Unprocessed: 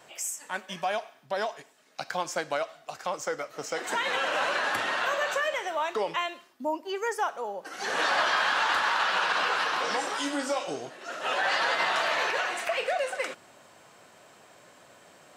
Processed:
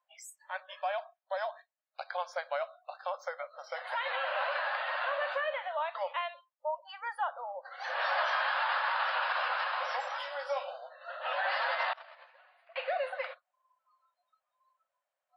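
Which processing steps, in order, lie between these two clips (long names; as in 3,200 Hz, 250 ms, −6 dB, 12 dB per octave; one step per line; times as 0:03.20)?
noise reduction from a noise print of the clip's start 29 dB
0:11.93–0:12.76: noise gate −23 dBFS, range −27 dB
linear-phase brick-wall high-pass 500 Hz
high-shelf EQ 3,700 Hz −11 dB
level −3.5 dB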